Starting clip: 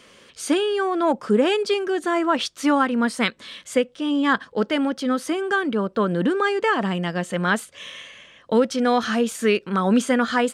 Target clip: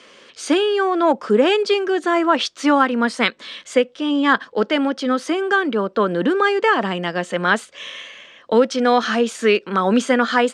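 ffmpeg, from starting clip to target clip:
-filter_complex "[0:a]acrossover=split=220 7800:gain=0.2 1 0.0891[a][b][c];[a][b][c]amix=inputs=3:normalize=0,volume=4.5dB"

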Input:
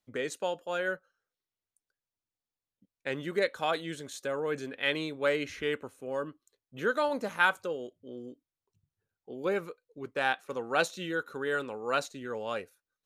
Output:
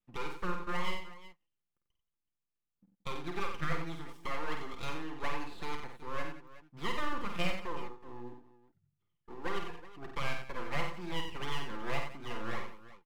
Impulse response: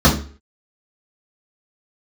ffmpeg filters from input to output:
-filter_complex "[0:a]acrossover=split=320|680|2300[a][b][c][d];[a]acompressor=threshold=-48dB:ratio=4[e];[b]acompressor=threshold=-34dB:ratio=4[f];[c]acompressor=threshold=-38dB:ratio=4[g];[d]acompressor=threshold=-50dB:ratio=4[h];[e][f][g][h]amix=inputs=4:normalize=0,highshelf=f=2.4k:t=q:w=1.5:g=-12.5,acrossover=split=380[i][j];[j]aeval=exprs='abs(val(0))':c=same[k];[i][k]amix=inputs=2:normalize=0,equalizer=f=1.2k:w=6.2:g=5.5,aecho=1:1:5.8:0.45,aecho=1:1:50|91|176|373:0.501|0.422|0.158|0.158,volume=-1.5dB"

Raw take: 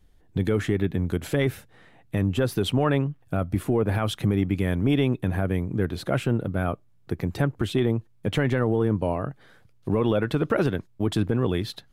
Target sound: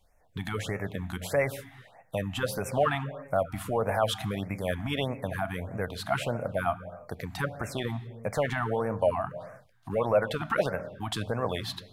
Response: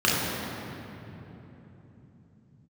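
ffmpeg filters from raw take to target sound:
-filter_complex "[0:a]lowshelf=f=460:t=q:w=3:g=-9,asplit=2[a][b];[1:a]atrim=start_sample=2205,afade=t=out:st=0.4:d=0.01,atrim=end_sample=18081[c];[b][c]afir=irnorm=-1:irlink=0,volume=-30.5dB[d];[a][d]amix=inputs=2:normalize=0,afftfilt=real='re*(1-between(b*sr/1024,440*pow(3900/440,0.5+0.5*sin(2*PI*1.6*pts/sr))/1.41,440*pow(3900/440,0.5+0.5*sin(2*PI*1.6*pts/sr))*1.41))':imag='im*(1-between(b*sr/1024,440*pow(3900/440,0.5+0.5*sin(2*PI*1.6*pts/sr))/1.41,440*pow(3900/440,0.5+0.5*sin(2*PI*1.6*pts/sr))*1.41))':win_size=1024:overlap=0.75"

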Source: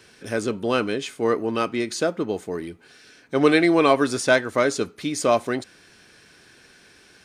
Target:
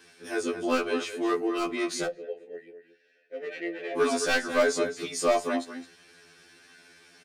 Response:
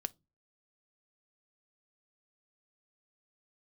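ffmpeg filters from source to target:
-filter_complex "[0:a]highpass=f=220:p=1,asplit=2[a][b];[b]adelay=215.7,volume=-9dB,highshelf=f=4k:g=-4.85[c];[a][c]amix=inputs=2:normalize=0,aeval=exprs='0.251*(abs(mod(val(0)/0.251+3,4)-2)-1)':c=same,asettb=1/sr,asplit=3[d][e][f];[d]atrim=end=2.064[g];[e]atrim=start=2.06:end=3.97,asetpts=PTS-STARTPTS,afade=t=in:d=0.004:c=qsin,afade=t=out:st=1.906:d=0.004:c=qsin,asplit=3[h][i][j];[h]bandpass=f=530:t=q:w=8,volume=0dB[k];[i]bandpass=f=1.84k:t=q:w=8,volume=-6dB[l];[j]bandpass=f=2.48k:t=q:w=8,volume=-9dB[m];[k][l][m]amix=inputs=3:normalize=0[n];[f]atrim=start=3.966[o];[g][n]acrossfade=d=0.004:c1=hsin:c2=qsin[p];[p][o]acrossfade=d=0.004:c1=qsin:c2=hsin[q];[1:a]atrim=start_sample=2205[r];[q][r]afir=irnorm=-1:irlink=0,afftfilt=real='re*2*eq(mod(b,4),0)':imag='im*2*eq(mod(b,4),0)':win_size=2048:overlap=0.75"

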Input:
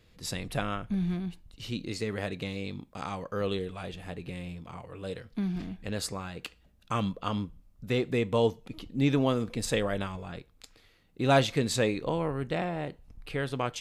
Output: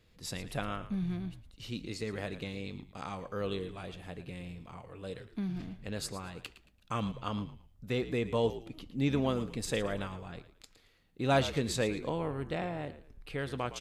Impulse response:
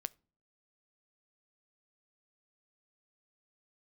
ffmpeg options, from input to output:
-filter_complex "[0:a]asplit=4[a][b][c][d];[b]adelay=112,afreqshift=-64,volume=-13.5dB[e];[c]adelay=224,afreqshift=-128,volume=-24dB[f];[d]adelay=336,afreqshift=-192,volume=-34.4dB[g];[a][e][f][g]amix=inputs=4:normalize=0,volume=-4.5dB"

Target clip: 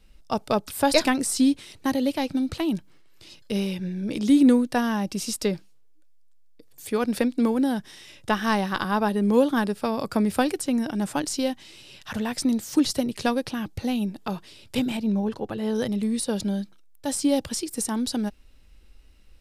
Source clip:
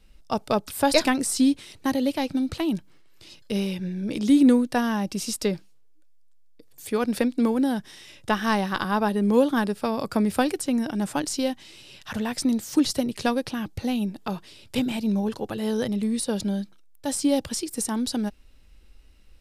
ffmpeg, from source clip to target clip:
-filter_complex "[0:a]asettb=1/sr,asplit=3[a][b][c];[a]atrim=end=14.974[d];[b]atrim=start=14.97:end=15.75,asetpts=PTS-STARTPTS,afade=t=in:d=0.004:c=qsin,afade=t=out:st=0.776:d=0.004:c=qsin,highshelf=f=4.1k:g=-10[e];[c]atrim=start=15.746[f];[d][e]acrossfade=d=0.004:c1=hsin:c2=qsin[g];[g][f]acrossfade=d=0.004:c1=qsin:c2=hsin"

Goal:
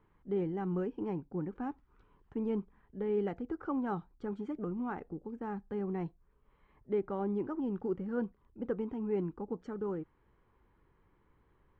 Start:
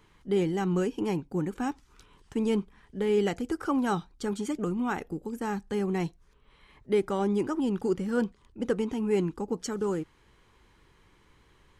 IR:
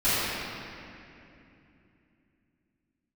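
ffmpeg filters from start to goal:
-af "lowpass=1.4k,volume=-7dB"

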